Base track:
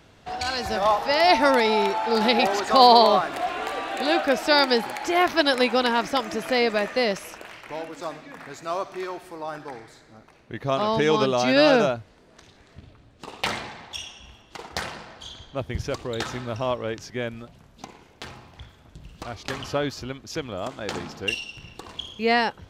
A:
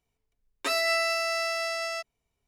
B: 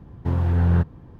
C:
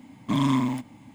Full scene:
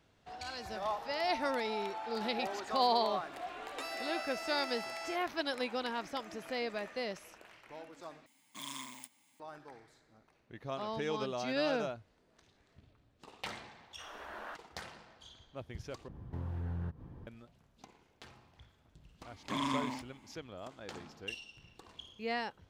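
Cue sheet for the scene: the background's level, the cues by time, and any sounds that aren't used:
base track -15.5 dB
3.14 s: add A -3 dB + compression 16:1, threshold -36 dBFS
8.26 s: replace with C -2 dB + differentiator
13.73 s: add B -6.5 dB + spectral gate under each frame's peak -30 dB weak
16.08 s: replace with B -6 dB + compression 2.5:1, threshold -36 dBFS
19.21 s: add C -6 dB + frequency weighting A

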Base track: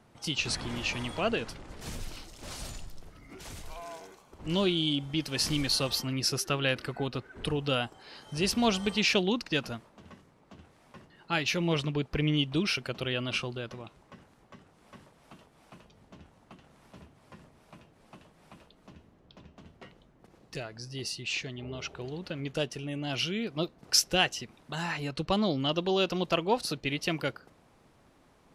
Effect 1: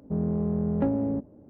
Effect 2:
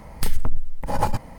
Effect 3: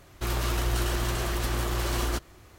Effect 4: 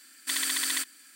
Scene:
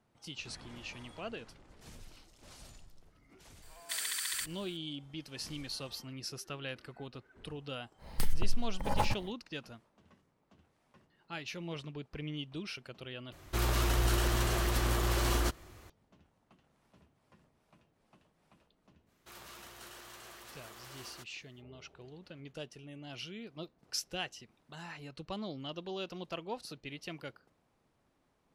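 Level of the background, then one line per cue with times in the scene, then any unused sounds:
base track -13 dB
3.62 s: add 4 -7.5 dB + high-pass 860 Hz
7.97 s: add 2 -8.5 dB, fades 0.10 s
13.32 s: replace with 3 -2 dB
19.05 s: add 3 -17 dB, fades 0.05 s + high-pass 780 Hz 6 dB/octave
not used: 1

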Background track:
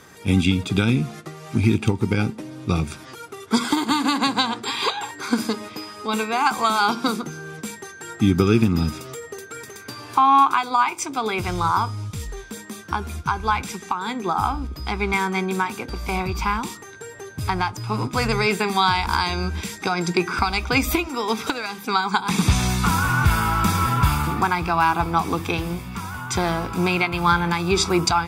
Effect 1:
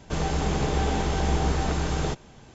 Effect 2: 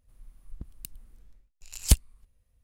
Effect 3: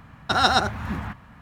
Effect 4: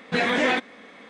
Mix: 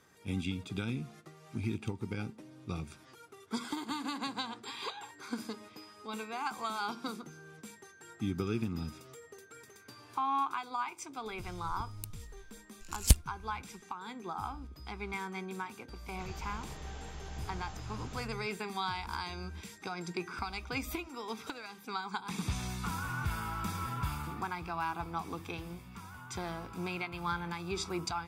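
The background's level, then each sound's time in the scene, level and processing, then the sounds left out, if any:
background track -17 dB
11.19 s: add 2 -3 dB
16.08 s: add 1 -17 dB + peaking EQ 350 Hz -8 dB 2.4 oct
not used: 3, 4

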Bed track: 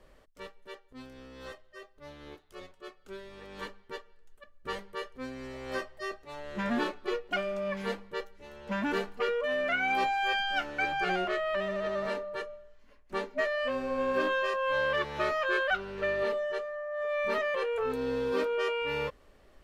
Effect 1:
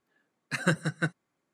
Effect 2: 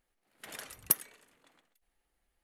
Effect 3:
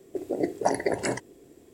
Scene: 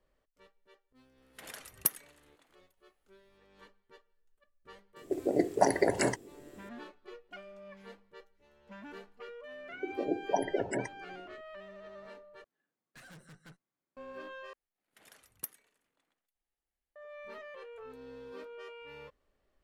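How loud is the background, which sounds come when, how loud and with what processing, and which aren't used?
bed track -17 dB
0.95 s: add 2 -2 dB
4.96 s: add 3 -0.5 dB
9.68 s: add 3 -5 dB + spectral gate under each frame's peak -15 dB strong
12.44 s: replace with 1 -11 dB + valve stage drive 40 dB, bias 0.6
14.53 s: replace with 2 -14 dB

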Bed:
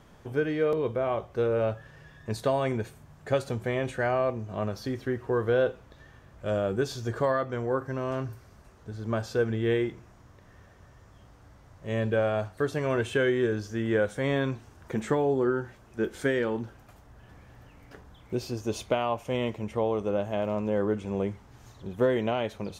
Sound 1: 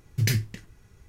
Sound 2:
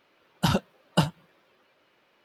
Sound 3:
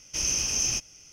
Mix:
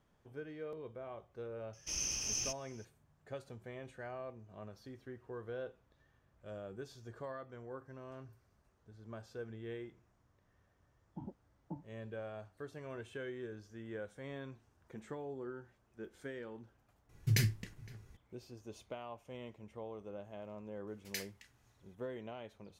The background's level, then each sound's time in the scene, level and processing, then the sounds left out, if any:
bed -19 dB
1.73 s: add 3 -11 dB
10.73 s: add 2 -11.5 dB + cascade formant filter u
17.09 s: add 1 -6.5 dB + echo from a far wall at 88 m, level -22 dB
20.87 s: add 1 -12.5 dB + high-pass 1.3 kHz

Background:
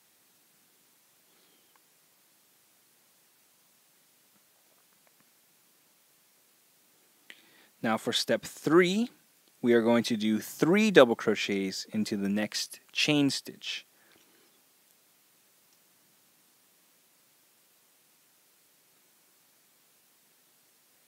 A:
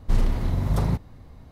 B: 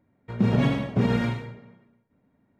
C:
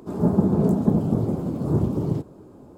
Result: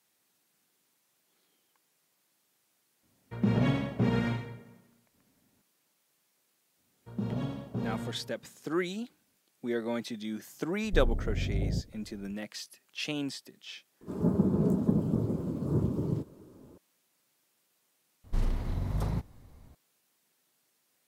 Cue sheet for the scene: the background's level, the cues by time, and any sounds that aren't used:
background -9 dB
3.03 s: add B -5 dB
6.78 s: add B -12 dB + peaking EQ 2.1 kHz -13 dB 0.55 oct
10.84 s: add A -8 dB + steep low-pass 670 Hz 48 dB/octave
14.01 s: add C -7 dB + peaking EQ 750 Hz -10 dB 0.28 oct
18.24 s: add A -8.5 dB

